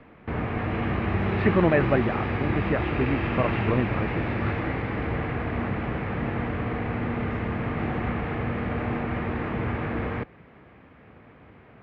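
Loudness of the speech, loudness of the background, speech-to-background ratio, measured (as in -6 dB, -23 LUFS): -27.5 LUFS, -28.5 LUFS, 1.0 dB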